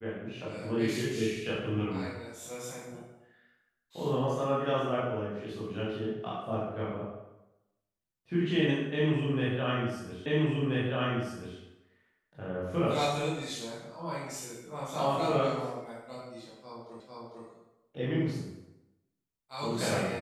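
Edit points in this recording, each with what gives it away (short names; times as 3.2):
10.26 repeat of the last 1.33 s
17 repeat of the last 0.45 s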